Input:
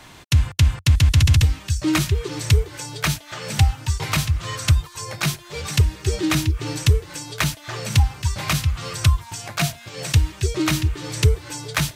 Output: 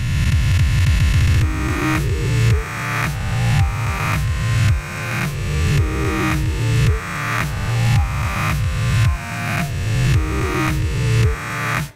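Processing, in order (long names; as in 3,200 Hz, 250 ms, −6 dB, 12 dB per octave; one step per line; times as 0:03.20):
peak hold with a rise ahead of every peak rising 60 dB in 2.42 s
high shelf with overshoot 2,600 Hz −7 dB, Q 1.5
level −3 dB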